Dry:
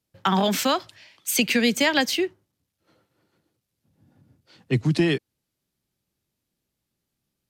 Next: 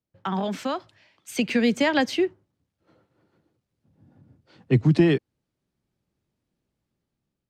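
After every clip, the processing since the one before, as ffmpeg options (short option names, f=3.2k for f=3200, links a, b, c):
-af "lowpass=10k,highshelf=f=2.3k:g=-12,dynaudnorm=f=570:g=5:m=11.5dB,volume=-5dB"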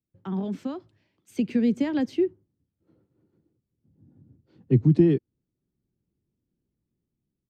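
-af "firequalizer=gain_entry='entry(360,0);entry(610,-12);entry(1500,-15)':delay=0.05:min_phase=1"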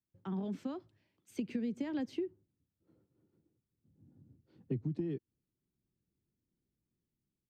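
-af "acompressor=threshold=-26dB:ratio=12,volume=-6.5dB"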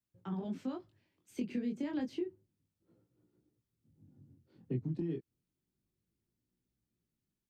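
-af "flanger=delay=16.5:depth=7.9:speed=0.3,volume=3dB"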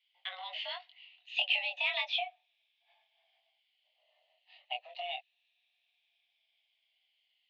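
-af "afftfilt=real='re*pow(10,8/40*sin(2*PI*(1.5*log(max(b,1)*sr/1024/100)/log(2)-(-0.29)*(pts-256)/sr)))':imag='im*pow(10,8/40*sin(2*PI*(1.5*log(max(b,1)*sr/1024/100)/log(2)-(-0.29)*(pts-256)/sr)))':win_size=1024:overlap=0.75,highpass=f=370:t=q:w=0.5412,highpass=f=370:t=q:w=1.307,lowpass=f=2.8k:t=q:w=0.5176,lowpass=f=2.8k:t=q:w=0.7071,lowpass=f=2.8k:t=q:w=1.932,afreqshift=360,aexciter=amount=15.3:drive=9.5:freq=2.3k"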